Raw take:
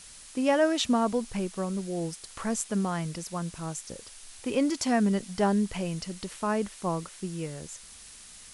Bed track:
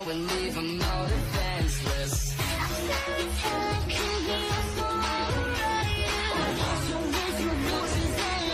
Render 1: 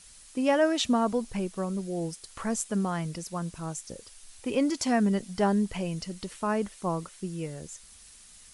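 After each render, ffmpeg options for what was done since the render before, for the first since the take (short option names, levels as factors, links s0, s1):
-af "afftdn=nr=6:nf=-49"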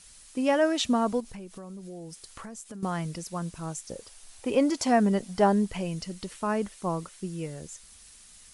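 -filter_complex "[0:a]asettb=1/sr,asplit=3[s0][s1][s2];[s0]atrim=end=1.204[s3];[s1]atrim=start=1.2:end=2.83,asetpts=PTS-STARTPTS,afade=t=in:d=0.004:c=qsin,afade=t=out:st=1.626:d=0.004:c=qsin,acompressor=threshold=0.0126:ratio=8:attack=3.2:release=140:knee=1:detection=peak[s4];[s2]atrim=start=2.826[s5];[s3][s4]acrossfade=d=0.004:c1=hsin:c2=qsin[s6];[s6][s5]acrossfade=d=0.004:c1=qsin:c2=hsin,asettb=1/sr,asplit=3[s7][s8][s9];[s7]atrim=end=3.894[s10];[s8]atrim=start=3.89:end=5.65,asetpts=PTS-STARTPTS,afade=t=in:d=0.004:c=qsin,afade=t=out:st=1.756:d=0.004:c=qsin,equalizer=f=690:t=o:w=1.6:g=5.5[s11];[s9]atrim=start=5.646[s12];[s10][s11]acrossfade=d=0.004:c1=hsin:c2=qsin[s13];[s13][s12]acrossfade=d=0.004:c1=qsin:c2=hsin"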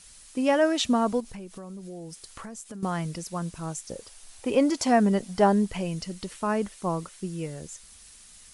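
-af "volume=1.19"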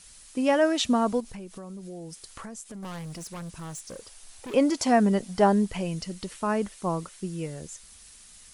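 -filter_complex "[0:a]asettb=1/sr,asplit=3[s0][s1][s2];[s0]atrim=end=2.674[s3];[s1]atrim=start=2.67:end=4.54,asetpts=PTS-STARTPTS,afade=t=in:d=0.004:c=qsin,afade=t=out:st=1.866:d=0.004:c=qsin,asoftclip=type=hard:threshold=0.0168[s4];[s2]atrim=start=4.536[s5];[s3][s4]acrossfade=d=0.004:c1=hsin:c2=qsin[s6];[s6][s5]acrossfade=d=0.004:c1=qsin:c2=hsin"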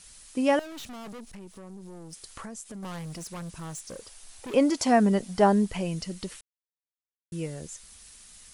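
-filter_complex "[0:a]asettb=1/sr,asplit=3[s0][s1][s2];[s0]atrim=end=0.594[s3];[s1]atrim=start=0.59:end=2.13,asetpts=PTS-STARTPTS,afade=t=in:d=0.004:c=qsin,afade=t=out:st=1.536:d=0.004:c=qsin,aeval=exprs='(tanh(100*val(0)+0.5)-tanh(0.5))/100':c=same[s4];[s2]atrim=start=2.126[s5];[s3][s4]acrossfade=d=0.004:c1=hsin:c2=qsin[s6];[s6][s5]acrossfade=d=0.004:c1=qsin:c2=hsin,asplit=3[s7][s8][s9];[s7]atrim=end=6.41,asetpts=PTS-STARTPTS,afade=t=out:st=6.406:d=0.004:c=hsin[s10];[s8]atrim=start=6.41:end=7.32,asetpts=PTS-STARTPTS,volume=0[s11];[s9]atrim=start=7.32,asetpts=PTS-STARTPTS,afade=t=in:d=0.004:c=hsin[s12];[s10][s11][s12]concat=n=3:v=0:a=1"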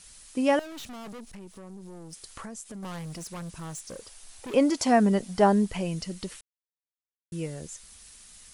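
-af anull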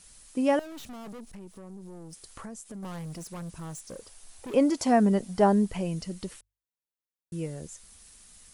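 -af "equalizer=f=3400:w=0.35:g=-5,bandreject=f=50:t=h:w=6,bandreject=f=100:t=h:w=6"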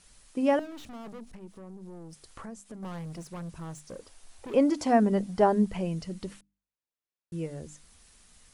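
-af "lowpass=f=4000:p=1,bandreject=f=50:t=h:w=6,bandreject=f=100:t=h:w=6,bandreject=f=150:t=h:w=6,bandreject=f=200:t=h:w=6,bandreject=f=250:t=h:w=6,bandreject=f=300:t=h:w=6"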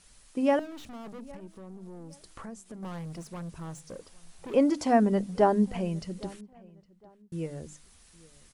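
-filter_complex "[0:a]asplit=2[s0][s1];[s1]adelay=811,lowpass=f=2500:p=1,volume=0.0708,asplit=2[s2][s3];[s3]adelay=811,lowpass=f=2500:p=1,volume=0.29[s4];[s0][s2][s4]amix=inputs=3:normalize=0"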